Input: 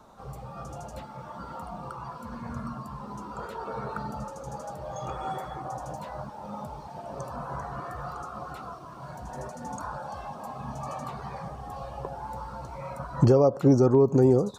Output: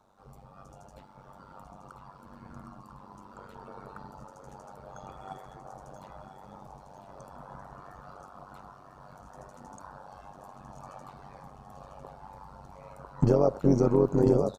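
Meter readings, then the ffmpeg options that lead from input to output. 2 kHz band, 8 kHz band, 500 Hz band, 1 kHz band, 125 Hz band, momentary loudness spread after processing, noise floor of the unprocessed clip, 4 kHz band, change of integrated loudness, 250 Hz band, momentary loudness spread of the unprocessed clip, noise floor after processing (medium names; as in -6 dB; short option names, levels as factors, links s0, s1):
-8.5 dB, -7.0 dB, -3.5 dB, -8.0 dB, -4.5 dB, 5 LU, -43 dBFS, -7.5 dB, +5.0 dB, -3.5 dB, 20 LU, -53 dBFS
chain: -af "aecho=1:1:999|1998|2997|3996|4995|5994:0.447|0.228|0.116|0.0593|0.0302|0.0154,agate=range=0.398:threshold=0.0316:ratio=16:detection=peak,tremolo=f=96:d=0.824"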